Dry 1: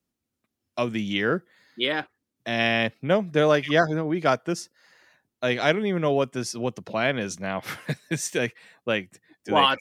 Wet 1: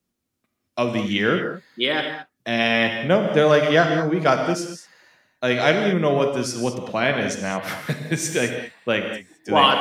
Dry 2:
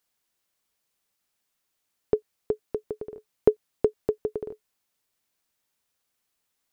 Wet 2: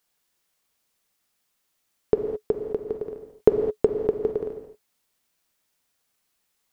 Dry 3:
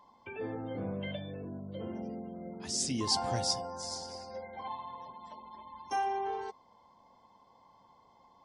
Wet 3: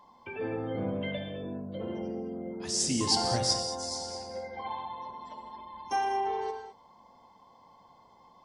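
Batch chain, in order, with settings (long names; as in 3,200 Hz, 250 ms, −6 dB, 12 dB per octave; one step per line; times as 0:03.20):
reverb whose tail is shaped and stops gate 240 ms flat, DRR 4.5 dB
level +3 dB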